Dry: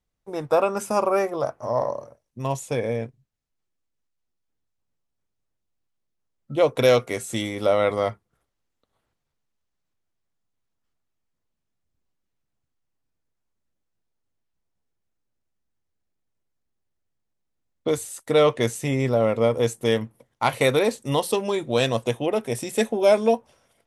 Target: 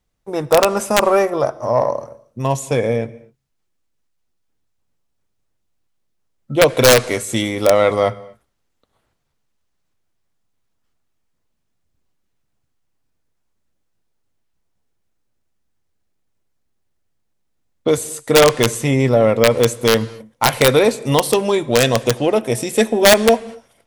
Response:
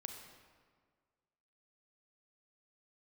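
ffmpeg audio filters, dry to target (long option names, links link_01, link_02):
-filter_complex "[0:a]aeval=exprs='0.531*(cos(1*acos(clip(val(0)/0.531,-1,1)))-cos(1*PI/2))+0.0237*(cos(5*acos(clip(val(0)/0.531,-1,1)))-cos(5*PI/2))':channel_layout=same,aeval=exprs='(mod(2.99*val(0)+1,2)-1)/2.99':channel_layout=same,asplit=2[link_01][link_02];[1:a]atrim=start_sample=2205,afade=type=out:start_time=0.18:duration=0.01,atrim=end_sample=8379,asetrate=22491,aresample=44100[link_03];[link_02][link_03]afir=irnorm=-1:irlink=0,volume=-12.5dB[link_04];[link_01][link_04]amix=inputs=2:normalize=0,volume=4.5dB"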